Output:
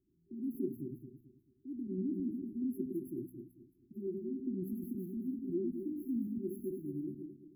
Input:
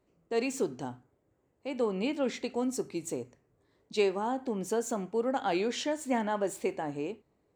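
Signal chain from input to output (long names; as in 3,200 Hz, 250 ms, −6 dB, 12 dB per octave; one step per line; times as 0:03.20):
feedback delay that plays each chunk backwards 110 ms, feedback 56%, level −4.5 dB
brick-wall band-stop 390–11,000 Hz
level −4 dB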